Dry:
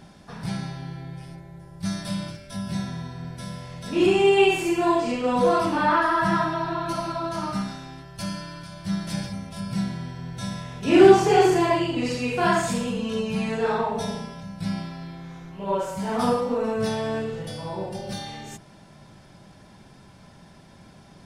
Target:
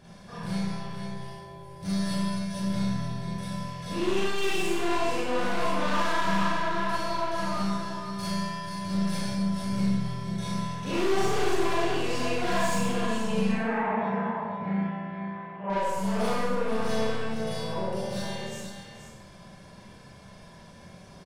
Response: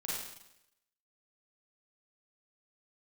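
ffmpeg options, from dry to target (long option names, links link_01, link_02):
-filter_complex "[0:a]aecho=1:1:1.8:0.33,aecho=1:1:478:0.335,aeval=exprs='(tanh(22.4*val(0)+0.3)-tanh(0.3))/22.4':channel_layout=same,asettb=1/sr,asplit=3[link_01][link_02][link_03];[link_01]atrim=end=13.494[link_04];[link_02]atrim=start=13.49:end=15.7,asetpts=PTS-STARTPTS,afade=type=in:duration=0.004:curve=qsin,afade=type=out:start_time=2.206:duration=0.004:curve=qsin,highpass=150,equalizer=frequency=240:width_type=q:width=4:gain=6,equalizer=frequency=440:width_type=q:width=4:gain=-4,equalizer=frequency=810:width_type=q:width=4:gain=8,equalizer=frequency=1900:width_type=q:width=4:gain=8,lowpass=frequency=2300:width=0.5412,lowpass=frequency=2300:width=1.3066[link_05];[link_03]atrim=start=15.696[link_06];[link_04][link_05]acrossfade=duration=0.004:curve1=hsin:curve2=qsin[link_07];[link_07][link_06]acrossfade=duration=0.004:curve1=qsin:curve2=hsin[link_08];[1:a]atrim=start_sample=2205,asetrate=48510,aresample=44100[link_09];[link_08][link_09]afir=irnorm=-1:irlink=0"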